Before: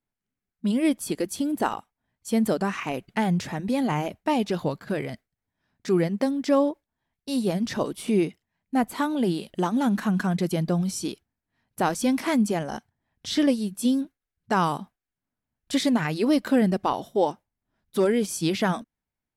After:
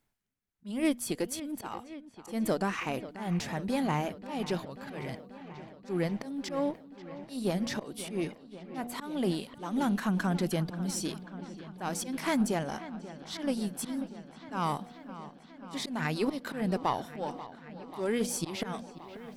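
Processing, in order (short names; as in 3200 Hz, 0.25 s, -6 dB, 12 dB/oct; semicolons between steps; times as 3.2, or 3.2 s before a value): de-hum 241.6 Hz, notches 3; reverse; upward compressor, threshold -42 dBFS; reverse; auto swell 0.203 s; bell 270 Hz -2.5 dB 2.5 oct; in parallel at -4.5 dB: one-sided clip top -35.5 dBFS, bottom -16.5 dBFS; on the sum: dark delay 0.537 s, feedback 77%, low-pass 3800 Hz, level -15 dB; gain -6 dB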